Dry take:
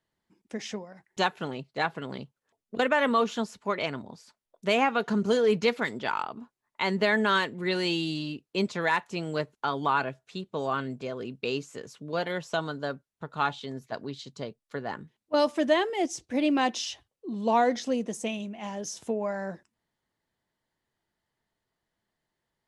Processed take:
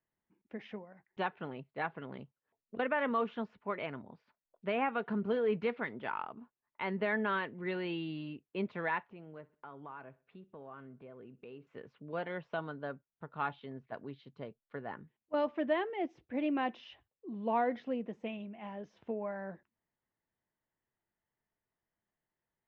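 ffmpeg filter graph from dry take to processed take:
ffmpeg -i in.wav -filter_complex "[0:a]asettb=1/sr,asplit=3[link_01][link_02][link_03];[link_01]atrim=end=9.084[link_04];[link_02]atrim=start=9.08:end=11.67,asetpts=PTS-STARTPTS,afade=type=in:duration=0.004:curve=qsin,afade=type=out:start_time=2.586:duration=0.004:curve=qsin,lowpass=frequency=1900:poles=1,acompressor=threshold=-46dB:ratio=2:attack=3.2:release=140:knee=1:detection=peak,aecho=1:1:63|126|189:0.0891|0.0365|0.015,atrim=end_sample=114219[link_05];[link_03]atrim=start=11.666[link_06];[link_04][link_05]acrossfade=duration=0.004:curve1=hsin:curve2=qsin[link_07];[link_07][link_06]acrossfade=duration=0.004:curve1=qsin:curve2=hsin,deesser=0.8,lowpass=frequency=2700:width=0.5412,lowpass=frequency=2700:width=1.3066,volume=-8dB" out.wav

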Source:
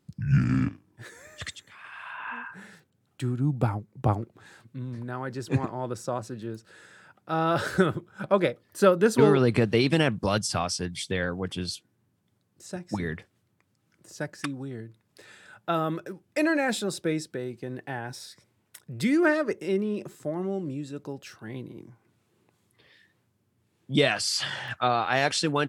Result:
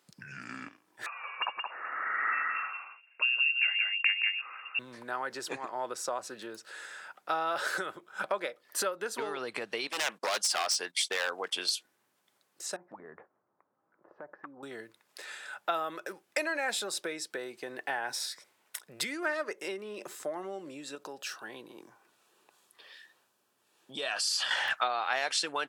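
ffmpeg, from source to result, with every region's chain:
ffmpeg -i in.wav -filter_complex "[0:a]asettb=1/sr,asplit=3[link_01][link_02][link_03];[link_01]atrim=end=1.064[link_04];[link_02]atrim=start=1.06:end=4.79,asetpts=PTS-STARTPTS,afade=type=in:duration=0.004:curve=qsin,afade=type=out:start_time=3.726:duration=0.004:curve=qsin,aecho=1:1:173:0.562,atrim=end_sample=164493,lowpass=frequency=2500:width_type=q:width=0.5098,lowpass=frequency=2500:width_type=q:width=0.6013,lowpass=frequency=2500:width_type=q:width=0.9,lowpass=frequency=2500:width_type=q:width=2.563,afreqshift=-2900[link_05];[link_03]atrim=start=4.786[link_06];[link_04][link_05]acrossfade=duration=0.004:curve1=hsin:curve2=qsin[link_07];[link_07][link_06]acrossfade=duration=0.004:curve1=qsin:curve2=hsin,asettb=1/sr,asplit=3[link_08][link_09][link_10];[link_08]atrim=end=9.874[link_11];[link_09]atrim=start=9.87:end=11.72,asetpts=PTS-STARTPTS,afade=type=in:duration=0.004:curve=qsin,afade=type=out:start_time=1.846:duration=0.004:curve=qsin,highpass=330,agate=range=-16dB:threshold=-45dB:ratio=16:release=100:detection=peak,aeval=exprs='0.0668*(abs(mod(val(0)/0.0668+3,4)-2)-1)':channel_layout=same[link_12];[link_10]atrim=start=11.716[link_13];[link_11][link_12]acrossfade=duration=0.004:curve1=hsin:curve2=qsin[link_14];[link_14][link_13]acrossfade=duration=0.004:curve1=qsin:curve2=hsin,asettb=1/sr,asplit=3[link_15][link_16][link_17];[link_15]atrim=end=12.764[link_18];[link_16]atrim=start=12.76:end=14.63,asetpts=PTS-STARTPTS,afade=type=in:duration=0.004:curve=qsin,afade=type=out:start_time=1.866:duration=0.004:curve=qsin,lowpass=frequency=1200:width=0.5412,lowpass=frequency=1200:width=1.3066,acompressor=threshold=-40dB:ratio=10:attack=3.2:release=140:knee=1:detection=peak[link_19];[link_17]atrim=start=14.626[link_20];[link_18][link_19]acrossfade=duration=0.004:curve1=hsin:curve2=qsin[link_21];[link_21][link_20]acrossfade=duration=0.004:curve1=qsin:curve2=hsin,asettb=1/sr,asplit=3[link_22][link_23][link_24];[link_22]atrim=end=20.954[link_25];[link_23]atrim=start=20.95:end=24.51,asetpts=PTS-STARTPTS,afade=type=in:duration=0.004:curve=qsin,afade=type=out:start_time=3.556:duration=0.004:curve=qsin,bandreject=frequency=2100:width=5.5,acompressor=threshold=-40dB:ratio=2:attack=3.2:release=140:knee=1:detection=peak[link_26];[link_24]atrim=start=24.506[link_27];[link_25][link_26]acrossfade=duration=0.004:curve1=hsin:curve2=qsin[link_28];[link_28][link_27]acrossfade=duration=0.004:curve1=qsin:curve2=hsin,acompressor=threshold=-33dB:ratio=6,highpass=670,volume=7.5dB" out.wav

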